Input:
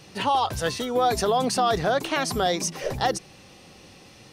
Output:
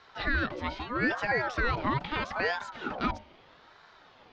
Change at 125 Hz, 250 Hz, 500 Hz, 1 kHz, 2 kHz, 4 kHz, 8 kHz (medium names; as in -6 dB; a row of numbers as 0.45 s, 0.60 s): -3.5 dB, -4.5 dB, -10.5 dB, -9.5 dB, +2.5 dB, -11.0 dB, -26.0 dB